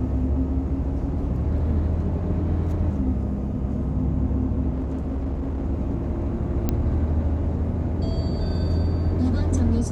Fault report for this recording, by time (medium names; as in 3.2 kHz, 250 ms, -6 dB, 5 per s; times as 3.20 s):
4.72–5.66 s: clipped -23 dBFS
6.69 s: pop -10 dBFS